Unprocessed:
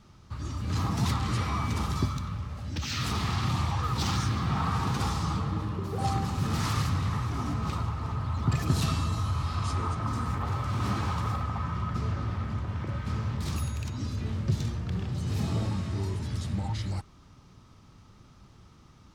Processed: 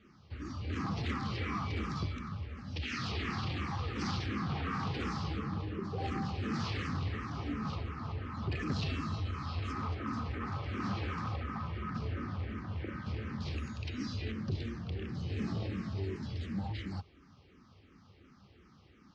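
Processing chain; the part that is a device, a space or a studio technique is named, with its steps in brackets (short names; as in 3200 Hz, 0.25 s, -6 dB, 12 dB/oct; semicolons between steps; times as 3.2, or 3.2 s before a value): 13.87–14.32 bell 4600 Hz +7.5 dB 2.9 oct; barber-pole phaser into a guitar amplifier (endless phaser -2.8 Hz; soft clip -24.5 dBFS, distortion -17 dB; speaker cabinet 92–4600 Hz, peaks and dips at 120 Hz -10 dB, 170 Hz -4 dB, 630 Hz -6 dB, 930 Hz -9 dB, 1300 Hz -4 dB, 3700 Hz -6 dB); gain +2.5 dB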